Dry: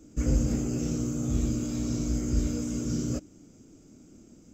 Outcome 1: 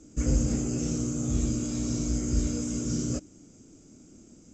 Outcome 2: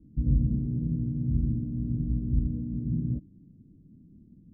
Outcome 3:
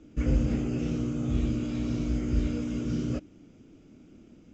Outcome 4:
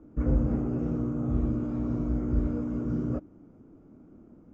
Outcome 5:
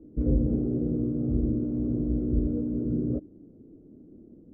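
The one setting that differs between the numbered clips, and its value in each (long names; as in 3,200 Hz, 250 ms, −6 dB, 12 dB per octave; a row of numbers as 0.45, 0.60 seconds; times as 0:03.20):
low-pass with resonance, frequency: 7,700, 170, 3,000, 1,100, 440 Hertz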